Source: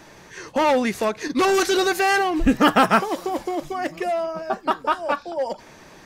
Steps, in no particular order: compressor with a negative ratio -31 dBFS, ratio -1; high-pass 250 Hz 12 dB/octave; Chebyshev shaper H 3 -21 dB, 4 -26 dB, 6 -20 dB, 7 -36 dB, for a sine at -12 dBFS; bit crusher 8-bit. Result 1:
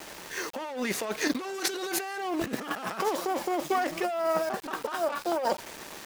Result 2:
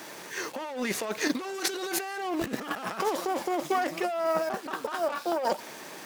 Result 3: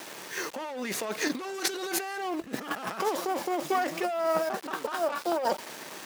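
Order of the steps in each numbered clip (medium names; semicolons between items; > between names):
Chebyshev shaper > high-pass > bit crusher > compressor with a negative ratio; bit crusher > Chebyshev shaper > high-pass > compressor with a negative ratio; Chebyshev shaper > bit crusher > compressor with a negative ratio > high-pass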